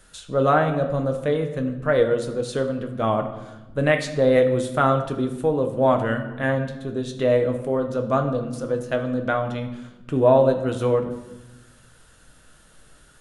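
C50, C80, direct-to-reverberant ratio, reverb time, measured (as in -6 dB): 9.0 dB, 11.5 dB, 4.5 dB, 1.1 s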